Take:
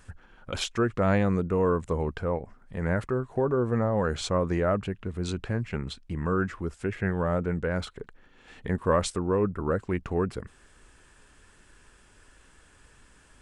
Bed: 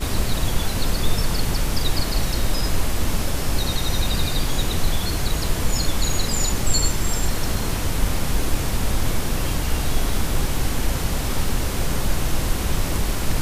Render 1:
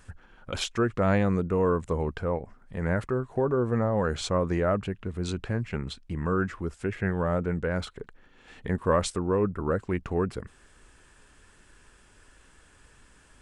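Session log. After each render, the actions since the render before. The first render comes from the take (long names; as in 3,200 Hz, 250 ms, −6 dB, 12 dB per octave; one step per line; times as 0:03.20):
no processing that can be heard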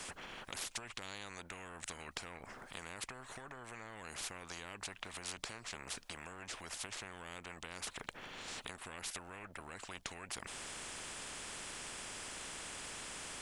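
downward compressor 6 to 1, threshold −31 dBFS, peak gain reduction 12 dB
every bin compressed towards the loudest bin 10 to 1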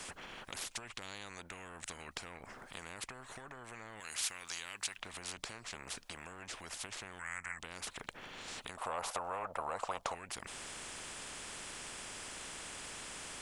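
0:04.00–0:04.97: tilt shelving filter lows −8 dB, about 1,200 Hz
0:07.19–0:07.59: drawn EQ curve 120 Hz 0 dB, 400 Hz −13 dB, 2,000 Hz +13 dB, 3,600 Hz −17 dB, 7,900 Hz +11 dB, 14,000 Hz −12 dB
0:08.77–0:10.15: flat-topped bell 780 Hz +14.5 dB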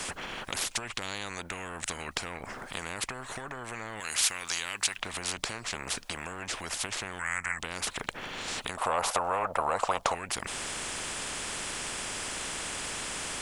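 level +10.5 dB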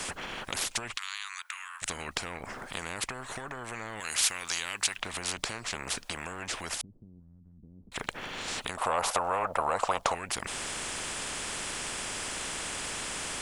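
0:00.97–0:01.82: elliptic high-pass filter 1,100 Hz, stop band 80 dB
0:06.81–0:07.92: transistor ladder low-pass 270 Hz, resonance 35%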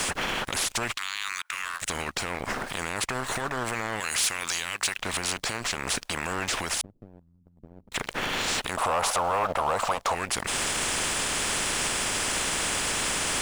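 leveller curve on the samples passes 3
brickwall limiter −18.5 dBFS, peak gain reduction 9 dB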